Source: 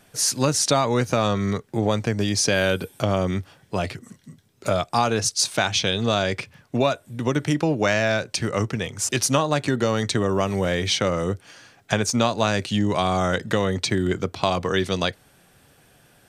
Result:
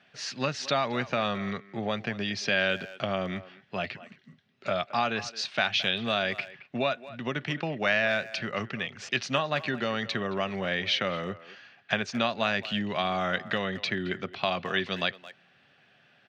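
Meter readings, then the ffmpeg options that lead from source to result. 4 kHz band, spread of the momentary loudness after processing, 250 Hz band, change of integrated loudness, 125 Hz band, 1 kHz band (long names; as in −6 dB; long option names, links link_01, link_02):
−4.5 dB, 9 LU, −9.0 dB, −6.5 dB, −12.5 dB, −6.0 dB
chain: -filter_complex "[0:a]highpass=200,equalizer=frequency=310:width_type=q:width=4:gain=-10,equalizer=frequency=470:width_type=q:width=4:gain=-8,equalizer=frequency=950:width_type=q:width=4:gain=-6,equalizer=frequency=1800:width_type=q:width=4:gain=4,equalizer=frequency=2700:width_type=q:width=4:gain=5,lowpass=frequency=4200:width=0.5412,lowpass=frequency=4200:width=1.3066,asplit=2[link_01][link_02];[link_02]adelay=220,highpass=300,lowpass=3400,asoftclip=type=hard:threshold=-15dB,volume=-16dB[link_03];[link_01][link_03]amix=inputs=2:normalize=0,volume=-4dB"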